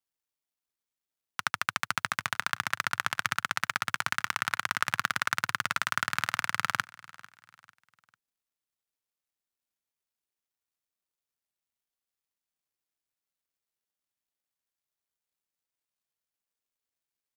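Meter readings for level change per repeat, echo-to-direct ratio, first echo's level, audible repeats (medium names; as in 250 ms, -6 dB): -8.5 dB, -20.5 dB, -21.0 dB, 2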